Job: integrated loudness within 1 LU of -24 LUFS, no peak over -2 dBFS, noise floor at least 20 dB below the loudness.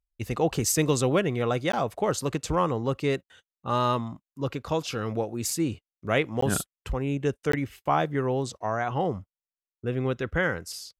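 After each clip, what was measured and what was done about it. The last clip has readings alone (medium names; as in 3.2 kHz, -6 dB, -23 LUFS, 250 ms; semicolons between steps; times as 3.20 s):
dropouts 3; longest dropout 14 ms; loudness -27.5 LUFS; peak level -9.5 dBFS; loudness target -24.0 LUFS
-> interpolate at 1.72/6.41/7.52 s, 14 ms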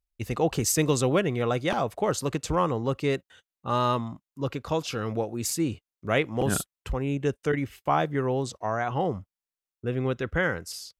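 dropouts 0; loudness -27.5 LUFS; peak level -9.5 dBFS; loudness target -24.0 LUFS
-> trim +3.5 dB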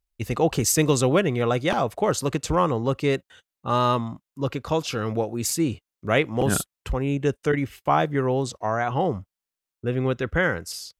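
loudness -24.0 LUFS; peak level -6.0 dBFS; noise floor -89 dBFS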